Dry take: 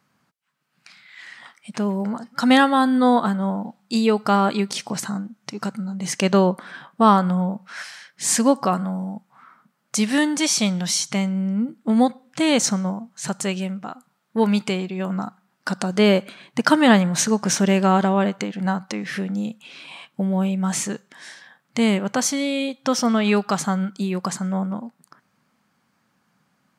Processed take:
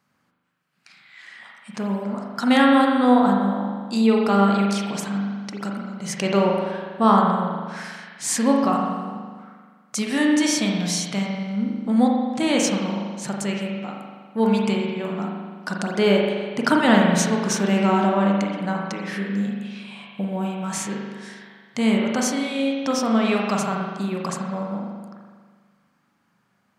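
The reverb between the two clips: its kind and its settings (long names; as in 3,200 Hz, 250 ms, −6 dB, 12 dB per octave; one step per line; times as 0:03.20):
spring reverb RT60 1.6 s, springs 40 ms, chirp 50 ms, DRR −1 dB
level −4 dB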